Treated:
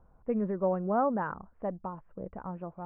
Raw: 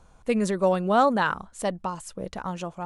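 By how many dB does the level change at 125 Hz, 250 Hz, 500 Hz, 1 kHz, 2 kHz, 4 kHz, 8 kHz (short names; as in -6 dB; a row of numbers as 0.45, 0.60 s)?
-5.5 dB, -5.5 dB, -6.5 dB, -8.5 dB, -14.0 dB, under -35 dB, under -40 dB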